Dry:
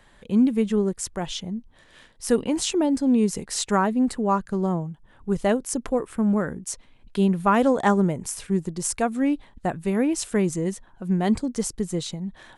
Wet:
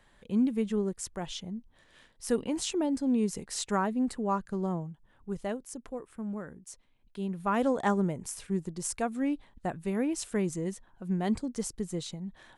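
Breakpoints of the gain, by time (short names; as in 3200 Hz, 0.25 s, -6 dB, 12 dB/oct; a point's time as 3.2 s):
4.86 s -7.5 dB
5.76 s -15 dB
7.2 s -15 dB
7.62 s -7.5 dB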